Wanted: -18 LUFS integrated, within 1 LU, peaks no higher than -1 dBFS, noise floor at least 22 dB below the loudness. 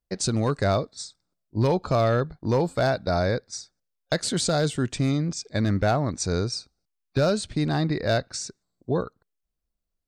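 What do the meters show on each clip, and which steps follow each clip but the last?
clipped 0.4%; flat tops at -14.0 dBFS; loudness -25.5 LUFS; peak -14.0 dBFS; loudness target -18.0 LUFS
-> clip repair -14 dBFS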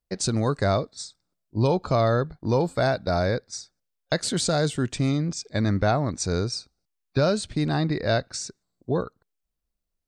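clipped 0.0%; loudness -25.0 LUFS; peak -10.0 dBFS; loudness target -18.0 LUFS
-> gain +7 dB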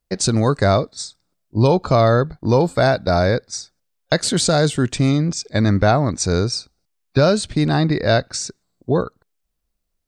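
loudness -18.0 LUFS; peak -3.0 dBFS; noise floor -74 dBFS

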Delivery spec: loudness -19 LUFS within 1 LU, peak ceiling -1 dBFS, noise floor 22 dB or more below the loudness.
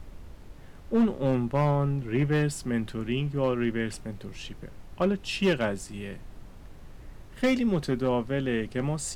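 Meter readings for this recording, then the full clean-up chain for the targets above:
clipped 0.8%; flat tops at -17.5 dBFS; noise floor -46 dBFS; noise floor target -50 dBFS; loudness -27.5 LUFS; peak -17.5 dBFS; loudness target -19.0 LUFS
-> clip repair -17.5 dBFS; noise print and reduce 6 dB; gain +8.5 dB

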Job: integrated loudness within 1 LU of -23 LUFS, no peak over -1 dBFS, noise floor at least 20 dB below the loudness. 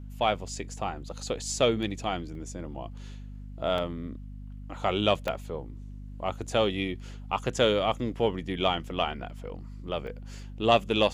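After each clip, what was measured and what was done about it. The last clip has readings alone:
dropouts 4; longest dropout 1.9 ms; hum 50 Hz; harmonics up to 250 Hz; hum level -39 dBFS; loudness -29.5 LUFS; peak -8.0 dBFS; loudness target -23.0 LUFS
-> interpolate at 2.35/3.78/5.28/10.07, 1.9 ms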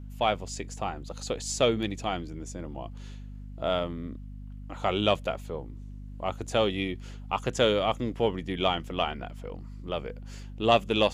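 dropouts 0; hum 50 Hz; harmonics up to 250 Hz; hum level -39 dBFS
-> notches 50/100/150/200/250 Hz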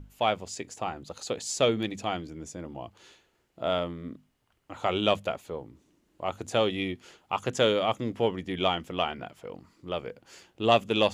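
hum none; loudness -29.5 LUFS; peak -8.0 dBFS; loudness target -23.0 LUFS
-> gain +6.5 dB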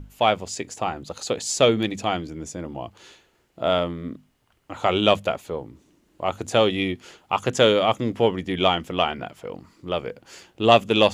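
loudness -23.0 LUFS; peak -1.5 dBFS; noise floor -64 dBFS

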